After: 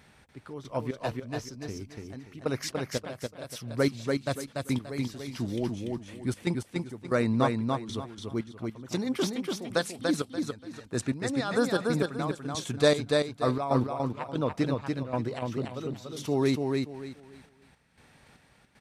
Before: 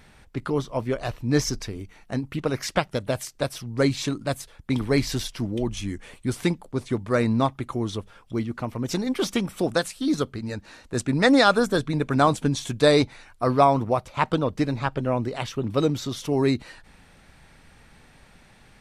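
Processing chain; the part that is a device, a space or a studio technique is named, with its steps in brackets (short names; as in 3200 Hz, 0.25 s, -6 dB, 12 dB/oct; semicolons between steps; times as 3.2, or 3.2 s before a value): HPF 73 Hz; trance gate with a delay (step gate "xx...xx.x....x" 116 bpm -12 dB; feedback echo 0.289 s, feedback 27%, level -3.5 dB); gain -4 dB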